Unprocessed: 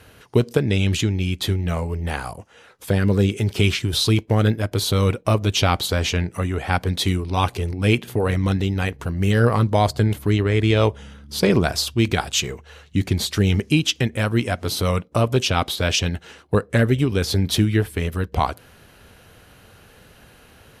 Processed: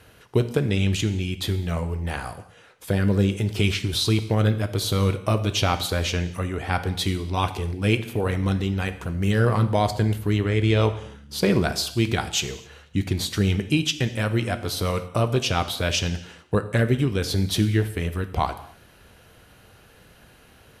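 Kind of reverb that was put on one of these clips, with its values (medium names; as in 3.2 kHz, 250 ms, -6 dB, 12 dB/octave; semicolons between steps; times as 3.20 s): gated-style reverb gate 300 ms falling, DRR 9.5 dB; trim -3.5 dB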